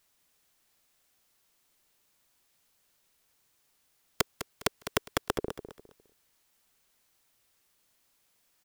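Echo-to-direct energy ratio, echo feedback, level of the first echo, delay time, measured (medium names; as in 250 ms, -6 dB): -10.5 dB, 28%, -11.0 dB, 204 ms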